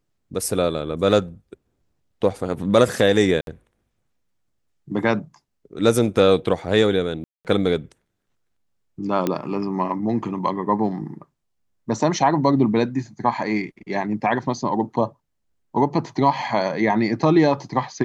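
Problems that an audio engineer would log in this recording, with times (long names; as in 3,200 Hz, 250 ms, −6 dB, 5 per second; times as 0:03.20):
0:03.41–0:03.47: drop-out 62 ms
0:07.24–0:07.45: drop-out 208 ms
0:09.27: click −9 dBFS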